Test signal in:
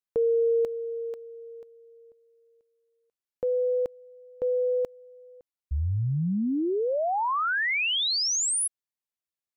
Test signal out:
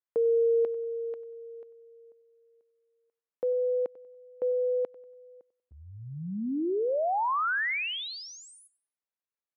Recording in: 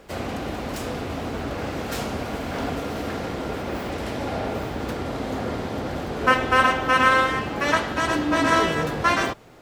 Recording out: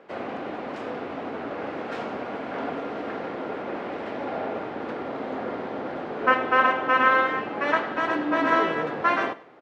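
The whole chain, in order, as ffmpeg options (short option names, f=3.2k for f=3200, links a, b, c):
-af "highpass=270,lowpass=2.2k,aecho=1:1:95|190|285:0.112|0.0359|0.0115,volume=-1dB"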